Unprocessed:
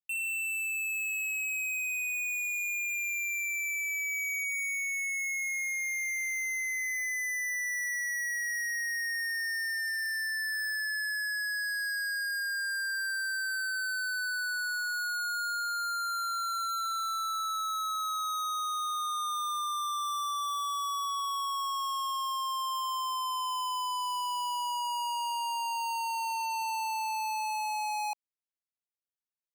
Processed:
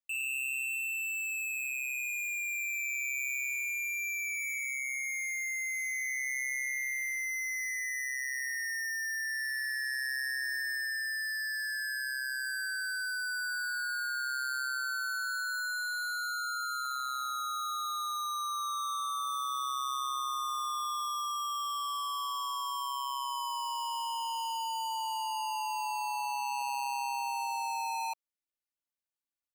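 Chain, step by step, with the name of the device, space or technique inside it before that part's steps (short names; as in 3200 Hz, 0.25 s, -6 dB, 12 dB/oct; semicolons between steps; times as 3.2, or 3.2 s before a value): ring-modulated robot voice (ring modulator 66 Hz; comb 3.4 ms, depth 88%); gain -1.5 dB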